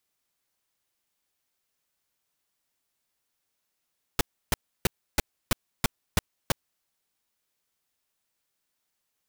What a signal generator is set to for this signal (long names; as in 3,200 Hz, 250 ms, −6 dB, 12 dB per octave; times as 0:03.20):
noise bursts pink, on 0.02 s, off 0.31 s, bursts 8, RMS −21 dBFS